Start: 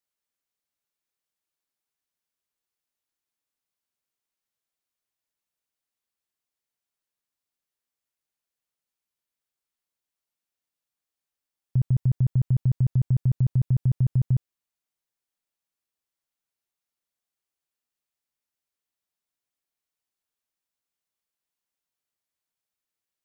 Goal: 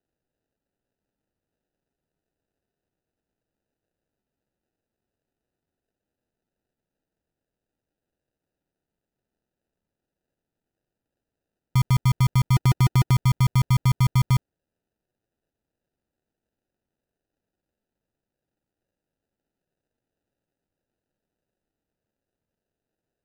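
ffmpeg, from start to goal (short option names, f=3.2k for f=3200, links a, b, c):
-filter_complex "[0:a]asplit=3[a][b][c];[a]afade=t=out:st=12.53:d=0.02[d];[b]equalizer=f=360:w=1.9:g=11.5,afade=t=in:st=12.53:d=0.02,afade=t=out:st=13.14:d=0.02[e];[c]afade=t=in:st=13.14:d=0.02[f];[d][e][f]amix=inputs=3:normalize=0,acrusher=samples=40:mix=1:aa=0.000001,volume=2.5dB"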